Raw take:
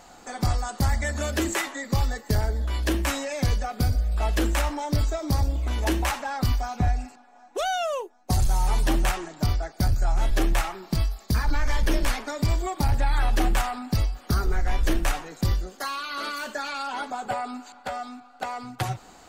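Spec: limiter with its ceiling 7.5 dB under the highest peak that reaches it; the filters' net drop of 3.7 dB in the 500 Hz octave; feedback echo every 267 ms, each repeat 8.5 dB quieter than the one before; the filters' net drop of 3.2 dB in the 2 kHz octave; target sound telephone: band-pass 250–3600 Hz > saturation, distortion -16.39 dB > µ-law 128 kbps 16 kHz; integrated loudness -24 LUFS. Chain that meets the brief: peaking EQ 500 Hz -4.5 dB; peaking EQ 2 kHz -3.5 dB; peak limiter -22.5 dBFS; band-pass 250–3600 Hz; feedback delay 267 ms, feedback 38%, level -8.5 dB; saturation -29 dBFS; trim +14 dB; µ-law 128 kbps 16 kHz

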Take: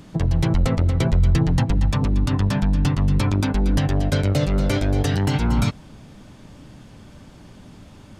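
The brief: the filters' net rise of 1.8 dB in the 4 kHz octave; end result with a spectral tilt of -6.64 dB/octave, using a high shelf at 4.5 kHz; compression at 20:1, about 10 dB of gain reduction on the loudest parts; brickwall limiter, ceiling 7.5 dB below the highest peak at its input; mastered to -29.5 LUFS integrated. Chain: peaking EQ 4 kHz +5.5 dB; treble shelf 4.5 kHz -6.5 dB; compression 20:1, threshold -23 dBFS; trim +1.5 dB; peak limiter -20.5 dBFS

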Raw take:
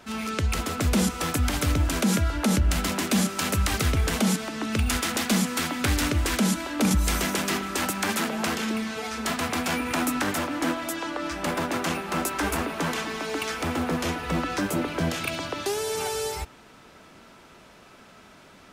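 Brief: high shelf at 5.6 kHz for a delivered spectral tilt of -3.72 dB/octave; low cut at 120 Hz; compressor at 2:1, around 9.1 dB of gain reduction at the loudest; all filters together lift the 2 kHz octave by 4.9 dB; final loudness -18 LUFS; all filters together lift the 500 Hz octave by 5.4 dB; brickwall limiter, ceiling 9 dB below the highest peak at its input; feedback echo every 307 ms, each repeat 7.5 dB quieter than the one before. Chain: high-pass 120 Hz; peaking EQ 500 Hz +6.5 dB; peaking EQ 2 kHz +5 dB; treble shelf 5.6 kHz +6.5 dB; compression 2:1, threshold -34 dBFS; peak limiter -24.5 dBFS; feedback delay 307 ms, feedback 42%, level -7.5 dB; trim +15 dB

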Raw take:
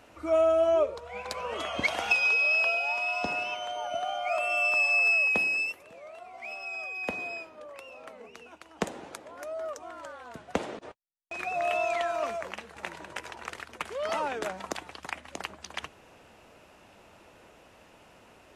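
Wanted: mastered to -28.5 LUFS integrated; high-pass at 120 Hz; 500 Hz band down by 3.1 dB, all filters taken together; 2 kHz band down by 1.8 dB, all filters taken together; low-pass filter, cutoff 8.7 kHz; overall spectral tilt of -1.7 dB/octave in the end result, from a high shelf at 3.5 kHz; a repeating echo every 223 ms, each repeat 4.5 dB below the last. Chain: high-pass 120 Hz; low-pass 8.7 kHz; peaking EQ 500 Hz -4.5 dB; peaking EQ 2 kHz -6.5 dB; treble shelf 3.5 kHz +7.5 dB; feedback delay 223 ms, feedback 60%, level -4.5 dB

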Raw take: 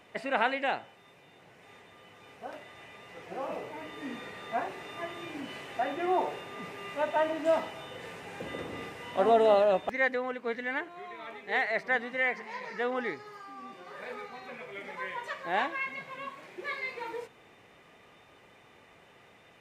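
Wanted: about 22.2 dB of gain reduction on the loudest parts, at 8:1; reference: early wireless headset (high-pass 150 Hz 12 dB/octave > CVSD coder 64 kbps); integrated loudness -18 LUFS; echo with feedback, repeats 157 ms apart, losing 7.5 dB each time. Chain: compression 8:1, threshold -43 dBFS; high-pass 150 Hz 12 dB/octave; feedback delay 157 ms, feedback 42%, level -7.5 dB; CVSD coder 64 kbps; trim +28.5 dB

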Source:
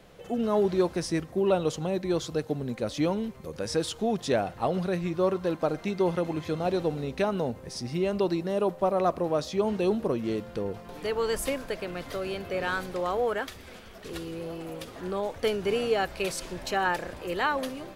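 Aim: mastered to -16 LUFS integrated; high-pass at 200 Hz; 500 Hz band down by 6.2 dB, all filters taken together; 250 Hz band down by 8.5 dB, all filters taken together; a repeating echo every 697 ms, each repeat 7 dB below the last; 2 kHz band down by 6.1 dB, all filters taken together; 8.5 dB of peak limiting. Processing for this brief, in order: high-pass 200 Hz; peaking EQ 250 Hz -8.5 dB; peaking EQ 500 Hz -4.5 dB; peaking EQ 2 kHz -8 dB; peak limiter -25.5 dBFS; feedback delay 697 ms, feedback 45%, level -7 dB; trim +20.5 dB

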